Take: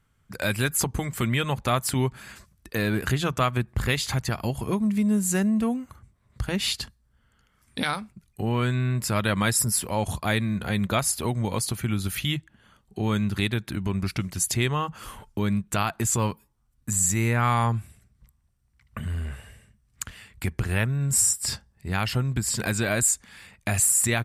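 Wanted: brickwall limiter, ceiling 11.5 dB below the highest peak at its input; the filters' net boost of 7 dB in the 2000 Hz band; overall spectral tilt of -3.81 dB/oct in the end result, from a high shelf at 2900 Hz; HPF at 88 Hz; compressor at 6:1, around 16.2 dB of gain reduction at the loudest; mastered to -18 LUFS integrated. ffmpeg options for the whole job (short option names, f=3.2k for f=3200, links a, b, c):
-af "highpass=88,equalizer=f=2k:t=o:g=5.5,highshelf=f=2.9k:g=8.5,acompressor=threshold=-28dB:ratio=6,volume=15dB,alimiter=limit=-6dB:level=0:latency=1"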